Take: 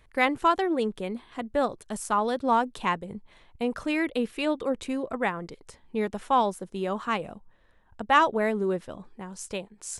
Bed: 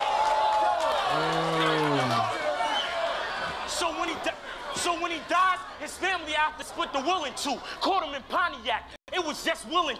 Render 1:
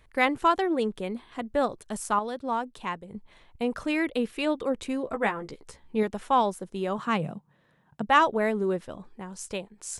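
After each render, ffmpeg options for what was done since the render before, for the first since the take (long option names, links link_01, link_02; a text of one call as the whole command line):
ffmpeg -i in.wav -filter_complex "[0:a]asettb=1/sr,asplit=3[link_01][link_02][link_03];[link_01]atrim=end=5.044[link_04];[link_02]atrim=start=5.04:end=6.03,asetpts=PTS-STARTPTS,afade=type=in:duration=0.004:curve=qsin,afade=type=out:start_time=0.986:duration=0.004:curve=qsin,asplit=2[link_05][link_06];[link_06]adelay=14,volume=-6dB[link_07];[link_05][link_07]amix=inputs=2:normalize=0,atrim=end_sample=43659[link_08];[link_03]atrim=start=6.026[link_09];[link_04][link_08]acrossfade=duration=0.004:curve1=hsin:curve2=qsin[link_10];[link_10][link_09]acrossfade=duration=0.004:curve1=qsin:curve2=hsin,asettb=1/sr,asplit=3[link_11][link_12][link_13];[link_11]atrim=end=6.984[link_14];[link_12]atrim=start=6.98:end=8.07,asetpts=PTS-STARTPTS,afade=type=in:duration=0.004:curve=qsin,afade=type=out:start_time=1.086:duration=0.004:curve=qsin,highpass=frequency=150:width_type=q:width=4.9[link_15];[link_13]atrim=start=8.066[link_16];[link_14][link_15]acrossfade=duration=0.004:curve1=hsin:curve2=qsin[link_17];[link_17][link_16]acrossfade=duration=0.004:curve1=qsin:curve2=hsin,asplit=3[link_18][link_19][link_20];[link_18]atrim=end=2.192[link_21];[link_19]atrim=start=2.188:end=3.142,asetpts=PTS-STARTPTS,volume=-6dB[link_22];[link_20]atrim=start=3.138[link_23];[link_21][link_22]acrossfade=duration=0.004:curve1=hsin:curve2=hsin[link_24];[link_24][link_23]acrossfade=duration=0.004:curve1=hsin:curve2=hsin" out.wav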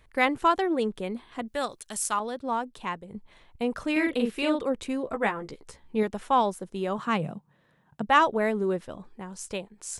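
ffmpeg -i in.wav -filter_complex "[0:a]asettb=1/sr,asplit=3[link_01][link_02][link_03];[link_01]atrim=end=1.484[link_04];[link_02]atrim=start=1.48:end=2.2,asetpts=PTS-STARTPTS,afade=type=in:duration=0.004:curve=qsin,afade=type=out:start_time=0.716:duration=0.004:curve=qsin,tiltshelf=frequency=1500:gain=-8[link_05];[link_03]atrim=start=2.196[link_06];[link_04][link_05]acrossfade=duration=0.004:curve1=hsin:curve2=qsin[link_07];[link_07][link_06]acrossfade=duration=0.004:curve1=qsin:curve2=hsin,asettb=1/sr,asplit=3[link_08][link_09][link_10];[link_08]atrim=end=3.924[link_11];[link_09]atrim=start=3.92:end=4.64,asetpts=PTS-STARTPTS,afade=type=in:duration=0.004:curve=qsin,afade=type=out:start_time=0.716:duration=0.004:curve=qsin,asplit=2[link_12][link_13];[link_13]adelay=42,volume=-3dB[link_14];[link_12][link_14]amix=inputs=2:normalize=0,atrim=end_sample=31752[link_15];[link_10]atrim=start=4.636[link_16];[link_11][link_15]acrossfade=duration=0.004:curve1=hsin:curve2=qsin[link_17];[link_17][link_16]acrossfade=duration=0.004:curve1=qsin:curve2=hsin" out.wav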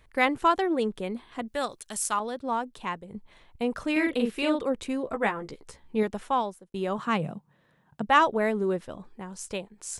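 ffmpeg -i in.wav -filter_complex "[0:a]asplit=2[link_01][link_02];[link_01]atrim=end=6.74,asetpts=PTS-STARTPTS,afade=type=out:start_time=6.17:duration=0.57[link_03];[link_02]atrim=start=6.74,asetpts=PTS-STARTPTS,afade=type=in:duration=0.004:curve=hsin[link_04];[link_03][link_04]concat=n=2:v=0:a=1" out.wav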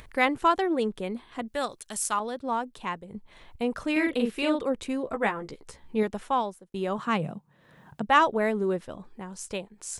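ffmpeg -i in.wav -af "acompressor=mode=upward:threshold=-40dB:ratio=2.5" out.wav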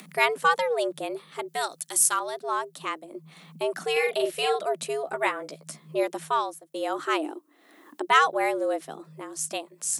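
ffmpeg -i in.wav -af "crystalizer=i=2:c=0,afreqshift=150" out.wav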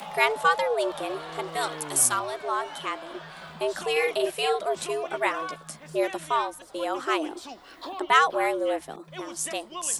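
ffmpeg -i in.wav -i bed.wav -filter_complex "[1:a]volume=-12dB[link_01];[0:a][link_01]amix=inputs=2:normalize=0" out.wav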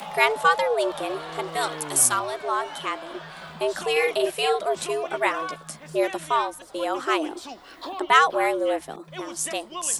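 ffmpeg -i in.wav -af "volume=2.5dB" out.wav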